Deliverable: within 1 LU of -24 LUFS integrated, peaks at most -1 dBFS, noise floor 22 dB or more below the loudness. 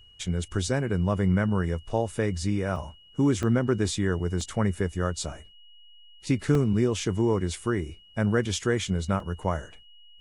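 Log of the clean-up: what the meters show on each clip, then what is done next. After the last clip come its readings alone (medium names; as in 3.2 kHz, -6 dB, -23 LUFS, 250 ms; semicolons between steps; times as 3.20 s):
dropouts 5; longest dropout 2.1 ms; steady tone 2.9 kHz; tone level -53 dBFS; loudness -27.0 LUFS; peak level -11.0 dBFS; loudness target -24.0 LUFS
-> interpolate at 2.76/3.43/4.41/6.55/9.20 s, 2.1 ms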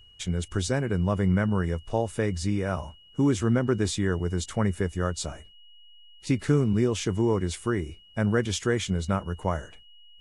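dropouts 0; steady tone 2.9 kHz; tone level -53 dBFS
-> band-stop 2.9 kHz, Q 30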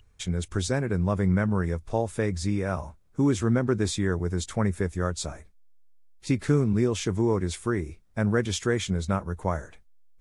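steady tone not found; loudness -27.0 LUFS; peak level -11.0 dBFS; loudness target -24.0 LUFS
-> trim +3 dB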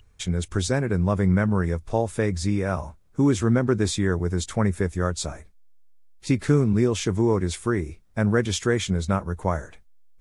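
loudness -24.0 LUFS; peak level -8.0 dBFS; noise floor -55 dBFS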